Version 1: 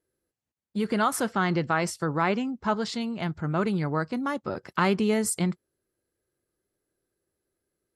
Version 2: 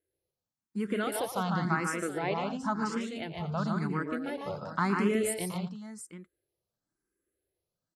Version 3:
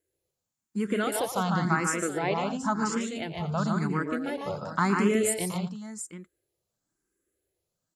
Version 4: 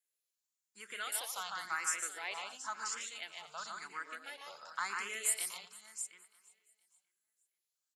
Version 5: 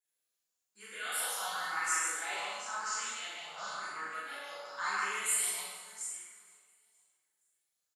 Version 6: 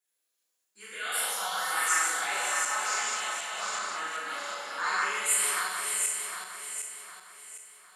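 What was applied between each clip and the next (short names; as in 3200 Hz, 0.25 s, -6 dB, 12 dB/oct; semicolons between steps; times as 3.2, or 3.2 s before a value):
on a send: tapped delay 0.115/0.15/0.234/0.723 s -11/-3/-12.5/-12.5 dB; on the sum: endless phaser +0.95 Hz; gain -4 dB
bell 7100 Hz +10.5 dB 0.28 oct; gain +3.5 dB
Bessel high-pass 2100 Hz, order 2; feedback echo 0.468 s, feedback 42%, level -23 dB; gain -2.5 dB
doubler 40 ms -4 dB; plate-style reverb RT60 1.3 s, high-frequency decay 0.7×, DRR -9.5 dB; gain -7 dB
regenerating reverse delay 0.379 s, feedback 60%, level -3.5 dB; HPF 200 Hz 12 dB/oct; gain +4.5 dB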